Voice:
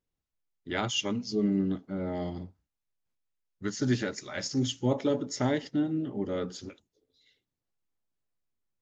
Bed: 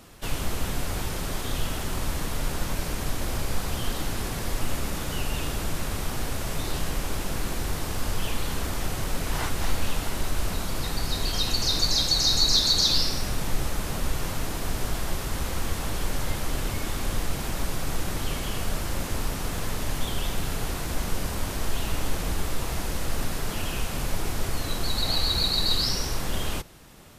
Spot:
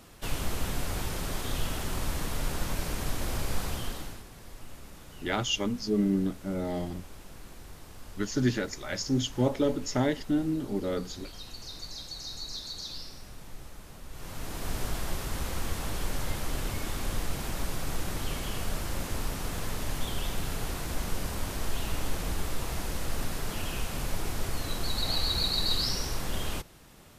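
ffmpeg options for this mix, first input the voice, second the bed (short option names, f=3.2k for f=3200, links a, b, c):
-filter_complex "[0:a]adelay=4550,volume=1dB[a];[1:a]volume=11dB,afade=t=out:st=3.63:d=0.61:silence=0.177828,afade=t=in:st=14.09:d=0.65:silence=0.199526[b];[a][b]amix=inputs=2:normalize=0"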